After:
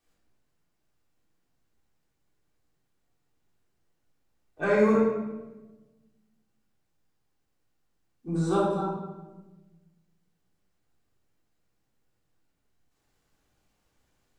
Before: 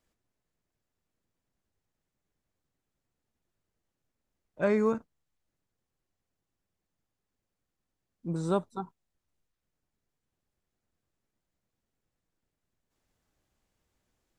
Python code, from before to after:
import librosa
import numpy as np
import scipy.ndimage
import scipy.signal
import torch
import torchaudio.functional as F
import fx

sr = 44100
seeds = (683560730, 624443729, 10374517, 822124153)

y = fx.low_shelf(x, sr, hz=340.0, db=-5.5)
y = fx.room_shoebox(y, sr, seeds[0], volume_m3=670.0, walls='mixed', distance_m=3.6)
y = y * 10.0 ** (-1.5 / 20.0)